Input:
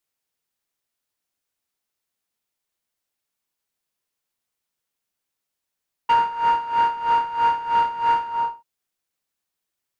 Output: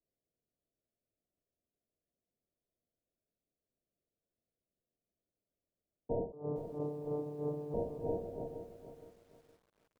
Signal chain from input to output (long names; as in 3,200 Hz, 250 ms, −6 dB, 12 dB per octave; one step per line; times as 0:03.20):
adaptive Wiener filter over 25 samples
Butterworth low-pass 710 Hz 96 dB per octave
0:06.32–0:07.74: channel vocoder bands 16, saw 148 Hz
feedback echo at a low word length 466 ms, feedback 35%, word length 11 bits, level −10 dB
level +3 dB